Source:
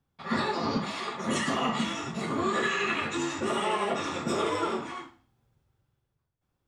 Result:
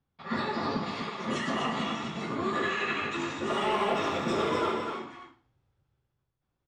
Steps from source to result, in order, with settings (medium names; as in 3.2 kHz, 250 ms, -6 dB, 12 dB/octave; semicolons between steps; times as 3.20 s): low-pass 5.1 kHz 12 dB/octave; 3.50–4.72 s: waveshaping leveller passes 1; on a send: loudspeakers at several distances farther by 42 m -10 dB, 85 m -6 dB; on the sum: trim -3 dB